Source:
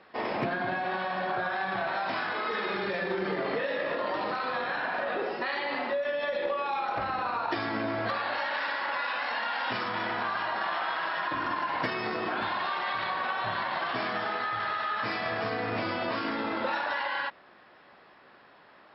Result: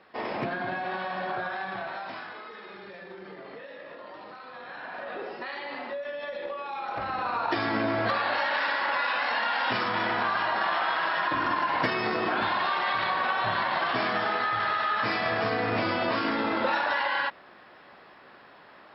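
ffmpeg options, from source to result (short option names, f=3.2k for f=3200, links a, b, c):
-af "volume=16dB,afade=t=out:st=1.33:d=1.2:silence=0.251189,afade=t=in:st=4.51:d=0.68:silence=0.398107,afade=t=in:st=6.71:d=0.99:silence=0.354813"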